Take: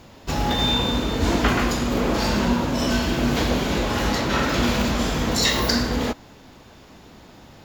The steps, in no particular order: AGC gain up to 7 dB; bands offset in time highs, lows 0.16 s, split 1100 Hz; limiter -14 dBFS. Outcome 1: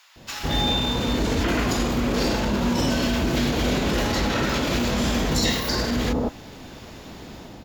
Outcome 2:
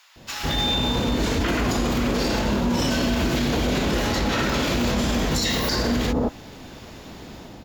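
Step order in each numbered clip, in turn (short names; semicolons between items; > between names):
AGC > limiter > bands offset in time; AGC > bands offset in time > limiter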